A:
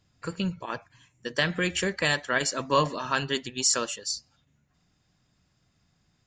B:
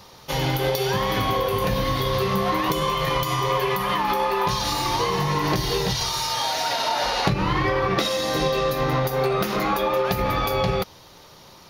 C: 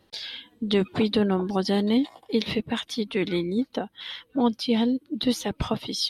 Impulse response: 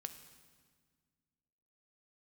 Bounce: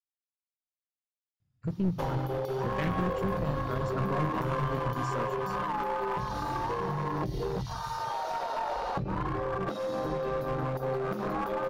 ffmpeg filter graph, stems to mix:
-filter_complex "[0:a]bass=frequency=250:gain=6,treble=frequency=4000:gain=-6,alimiter=limit=-19.5dB:level=0:latency=1:release=225,equalizer=frequency=120:width=1.9:gain=12,adelay=1400,volume=-3dB[link_01];[1:a]acompressor=threshold=-27dB:ratio=16,adelay=1700,volume=1dB[link_02];[link_01][link_02]amix=inputs=2:normalize=0,afwtdn=0.0316,aeval=exprs='clip(val(0),-1,0.0355)':channel_layout=same"

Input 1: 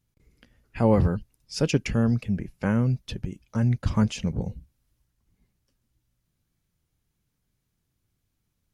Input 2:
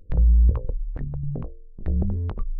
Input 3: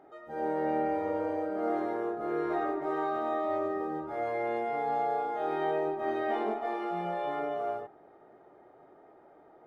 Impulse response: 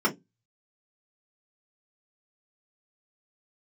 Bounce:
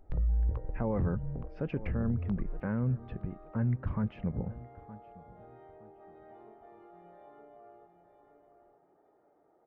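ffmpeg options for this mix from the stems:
-filter_complex "[0:a]lowpass=frequency=1900:width=0.5412,lowpass=frequency=1900:width=1.3066,volume=-5.5dB,asplit=3[link_01][link_02][link_03];[link_02]volume=-22dB[link_04];[1:a]volume=-9.5dB,asplit=2[link_05][link_06];[link_06]volume=-21dB[link_07];[2:a]lowpass=frequency=1100:poles=1,acompressor=threshold=-43dB:ratio=4,volume=-11dB,asplit=2[link_08][link_09];[link_09]volume=-8.5dB[link_10];[link_03]apad=whole_len=426427[link_11];[link_08][link_11]sidechaincompress=threshold=-37dB:ratio=8:attack=46:release=148[link_12];[link_04][link_07][link_10]amix=inputs=3:normalize=0,aecho=0:1:917|1834|2751|3668:1|0.26|0.0676|0.0176[link_13];[link_01][link_05][link_12][link_13]amix=inputs=4:normalize=0,alimiter=limit=-23dB:level=0:latency=1:release=14"

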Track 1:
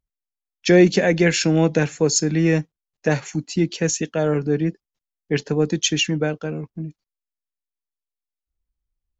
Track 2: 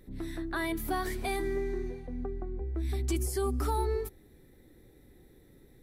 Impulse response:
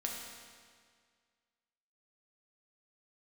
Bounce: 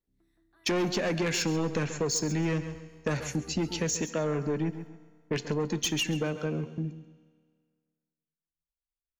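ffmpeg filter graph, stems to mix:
-filter_complex "[0:a]agate=range=-18dB:threshold=-35dB:ratio=16:detection=peak,asoftclip=type=tanh:threshold=-17dB,volume=-3dB,asplit=4[link_01][link_02][link_03][link_04];[link_02]volume=-15dB[link_05];[link_03]volume=-13.5dB[link_06];[1:a]acrusher=bits=9:mix=0:aa=0.000001,volume=-19dB,asplit=2[link_07][link_08];[link_08]volume=-19dB[link_09];[link_04]apad=whole_len=256800[link_10];[link_07][link_10]sidechaingate=range=-19dB:threshold=-49dB:ratio=16:detection=peak[link_11];[2:a]atrim=start_sample=2205[link_12];[link_05][link_09]amix=inputs=2:normalize=0[link_13];[link_13][link_12]afir=irnorm=-1:irlink=0[link_14];[link_06]aecho=0:1:135|270|405|540:1|0.26|0.0676|0.0176[link_15];[link_01][link_11][link_14][link_15]amix=inputs=4:normalize=0,acompressor=threshold=-26dB:ratio=6"

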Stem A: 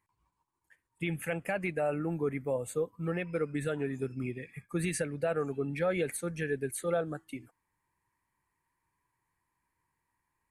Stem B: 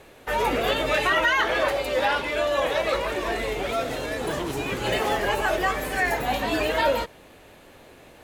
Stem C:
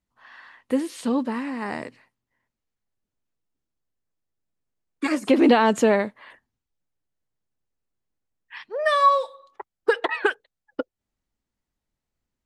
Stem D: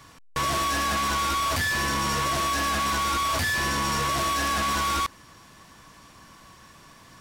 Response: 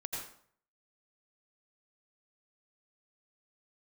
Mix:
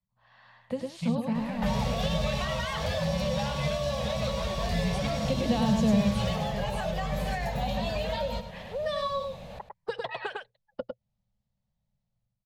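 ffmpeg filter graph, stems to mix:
-filter_complex "[0:a]equalizer=frequency=650:width=0.77:gain=-12,volume=-5.5dB[link_01];[1:a]acompressor=threshold=-34dB:ratio=2.5,adelay=1350,volume=2.5dB,asplit=2[link_02][link_03];[link_03]volume=-12dB[link_04];[2:a]equalizer=frequency=120:width_type=o:width=0.32:gain=14,volume=-6.5dB,asplit=2[link_05][link_06];[link_06]volume=-4dB[link_07];[3:a]adelay=1300,volume=-10dB[link_08];[link_04][link_07]amix=inputs=2:normalize=0,aecho=0:1:102:1[link_09];[link_01][link_02][link_05][link_08][link_09]amix=inputs=5:normalize=0,dynaudnorm=framelen=100:gausssize=9:maxgain=8dB,firequalizer=gain_entry='entry(110,0);entry(200,6);entry(300,-24);entry(550,0);entry(1400,-12);entry(3900,-5);entry(8800,-17)':delay=0.05:min_phase=1,acrossover=split=250|3000[link_10][link_11][link_12];[link_11]acompressor=threshold=-34dB:ratio=2.5[link_13];[link_10][link_13][link_12]amix=inputs=3:normalize=0"

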